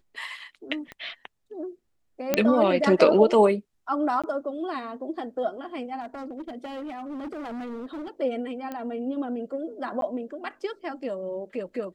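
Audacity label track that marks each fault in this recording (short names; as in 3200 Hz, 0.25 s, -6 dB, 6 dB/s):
0.920000	0.920000	pop -24 dBFS
2.340000	2.340000	pop -6 dBFS
4.220000	4.240000	gap 16 ms
6.000000	8.090000	clipped -32 dBFS
8.720000	8.720000	pop -21 dBFS
10.010000	10.020000	gap 12 ms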